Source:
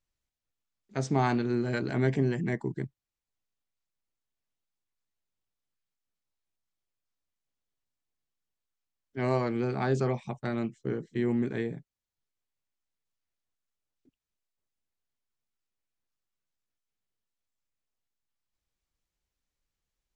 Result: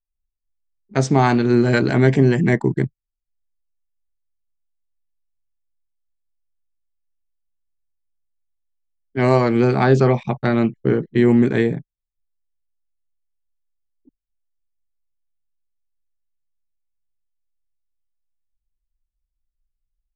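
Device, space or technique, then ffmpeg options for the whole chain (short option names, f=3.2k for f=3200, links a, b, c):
voice memo with heavy noise removal: -filter_complex "[0:a]asettb=1/sr,asplit=3[a][b][c];[a]atrim=end=9.844[d];[b]atrim=start=9.84:end=11.18,asetpts=PTS-STARTPTS,afade=t=in:d=0.004:c=qsin,afade=t=out:st=1.336:d=0.004:c=qsin,lowpass=5.1k[e];[c]atrim=start=11.176[f];[d][e]acrossfade=d=0.004:c1=hsin:c2=qsin[g];[g][f]acrossfade=d=0.004:c1=qsin:c2=hsin,anlmdn=0.000251,dynaudnorm=f=100:g=3:m=14.5dB"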